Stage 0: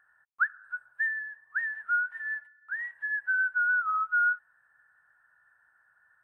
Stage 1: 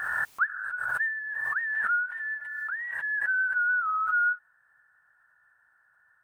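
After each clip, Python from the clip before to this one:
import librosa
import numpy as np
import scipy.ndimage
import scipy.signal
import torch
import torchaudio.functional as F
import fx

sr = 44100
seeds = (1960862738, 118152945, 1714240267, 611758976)

y = fx.pre_swell(x, sr, db_per_s=28.0)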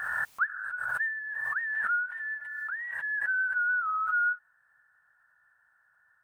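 y = fx.peak_eq(x, sr, hz=350.0, db=-12.0, octaves=0.21)
y = F.gain(torch.from_numpy(y), -2.0).numpy()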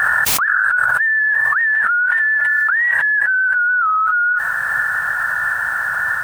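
y = fx.env_flatten(x, sr, amount_pct=100)
y = F.gain(torch.from_numpy(y), 7.5).numpy()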